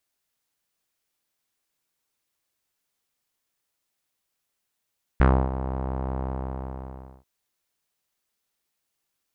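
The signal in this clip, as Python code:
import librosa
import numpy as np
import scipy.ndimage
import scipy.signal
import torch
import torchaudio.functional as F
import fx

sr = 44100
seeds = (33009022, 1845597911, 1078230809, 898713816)

y = fx.sub_voice(sr, note=36, wave='saw', cutoff_hz=900.0, q=2.0, env_oct=1.0, env_s=0.14, attack_ms=2.9, decay_s=0.29, sustain_db=-13.5, release_s=1.04, note_s=1.0, slope=12)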